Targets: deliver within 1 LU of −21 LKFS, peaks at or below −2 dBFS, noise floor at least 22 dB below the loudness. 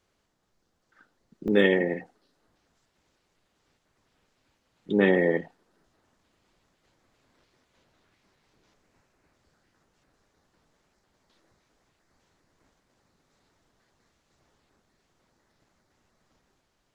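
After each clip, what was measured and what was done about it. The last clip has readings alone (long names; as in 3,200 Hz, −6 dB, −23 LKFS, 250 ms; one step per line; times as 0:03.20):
number of dropouts 1; longest dropout 1.6 ms; integrated loudness −24.5 LKFS; sample peak −7.5 dBFS; target loudness −21.0 LKFS
→ repair the gap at 0:01.48, 1.6 ms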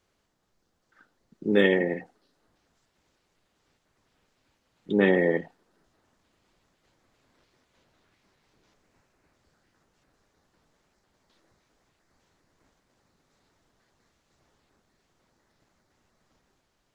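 number of dropouts 0; integrated loudness −24.5 LKFS; sample peak −7.5 dBFS; target loudness −21.0 LKFS
→ level +3.5 dB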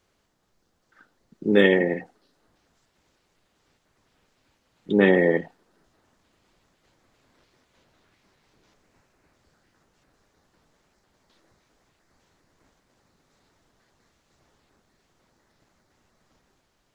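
integrated loudness −21.0 LKFS; sample peak −4.0 dBFS; background noise floor −71 dBFS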